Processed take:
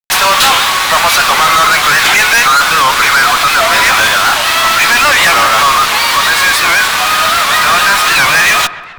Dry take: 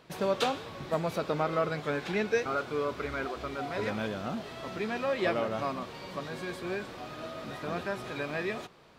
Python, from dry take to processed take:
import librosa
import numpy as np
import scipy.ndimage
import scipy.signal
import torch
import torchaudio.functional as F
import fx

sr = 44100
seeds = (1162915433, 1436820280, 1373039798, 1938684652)

y = scipy.signal.sosfilt(scipy.signal.butter(4, 1000.0, 'highpass', fs=sr, output='sos'), x)
y = fx.fuzz(y, sr, gain_db=52.0, gate_db=-52.0)
y = fx.echo_wet_lowpass(y, sr, ms=133, feedback_pct=60, hz=2300.0, wet_db=-15.5)
y = fx.record_warp(y, sr, rpm=78.0, depth_cents=160.0)
y = y * 10.0 ** (7.0 / 20.0)